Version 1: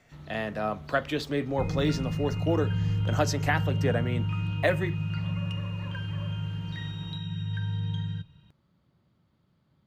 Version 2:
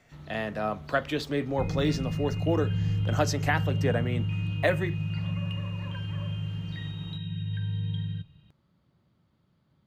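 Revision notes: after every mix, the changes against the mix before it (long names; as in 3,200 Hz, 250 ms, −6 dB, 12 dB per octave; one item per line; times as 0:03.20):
second sound: add phaser with its sweep stopped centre 2,700 Hz, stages 4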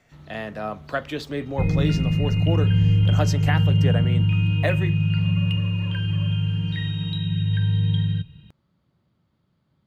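second sound +10.0 dB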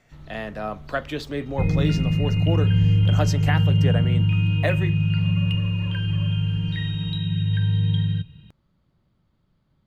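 first sound: remove high-pass filter 84 Hz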